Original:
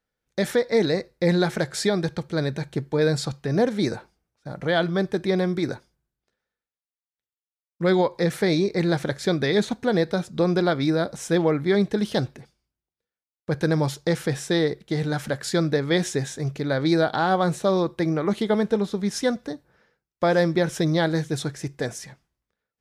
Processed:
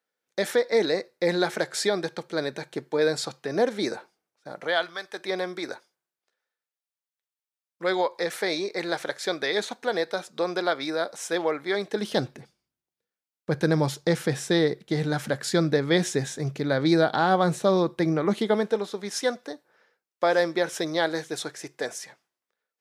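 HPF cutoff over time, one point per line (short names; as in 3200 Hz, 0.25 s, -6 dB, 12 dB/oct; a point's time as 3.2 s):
4.52 s 340 Hz
5.01 s 1300 Hz
5.31 s 530 Hz
11.81 s 530 Hz
12.35 s 130 Hz
18.23 s 130 Hz
18.82 s 420 Hz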